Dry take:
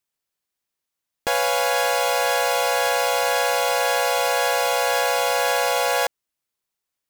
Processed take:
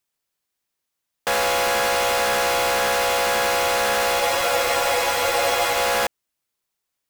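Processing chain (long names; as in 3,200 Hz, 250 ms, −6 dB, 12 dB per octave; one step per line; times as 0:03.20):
wave folding −18.5 dBFS
frozen spectrum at 0:04.22, 1.52 s
level +3 dB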